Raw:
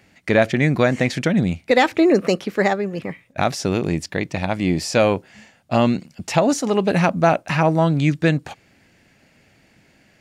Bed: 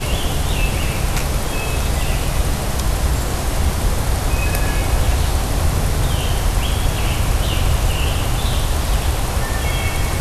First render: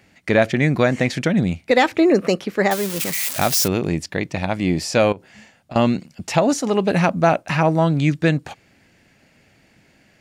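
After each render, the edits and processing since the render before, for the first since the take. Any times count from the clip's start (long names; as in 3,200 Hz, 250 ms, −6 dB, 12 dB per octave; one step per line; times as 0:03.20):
0:02.71–0:03.68: spike at every zero crossing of −12.5 dBFS
0:05.12–0:05.76: downward compressor 16 to 1, threshold −29 dBFS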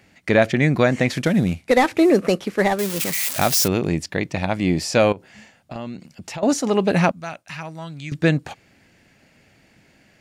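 0:01.08–0:02.79: variable-slope delta modulation 64 kbit/s
0:05.74–0:06.43: downward compressor 3 to 1, threshold −33 dBFS
0:07.11–0:08.12: guitar amp tone stack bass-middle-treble 5-5-5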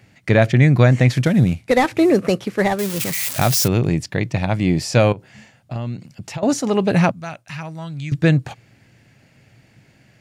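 parametric band 120 Hz +13.5 dB 0.57 octaves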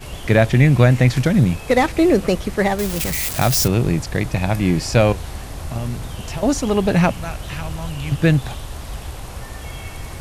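mix in bed −12.5 dB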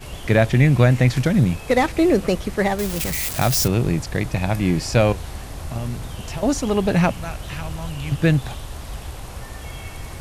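level −2 dB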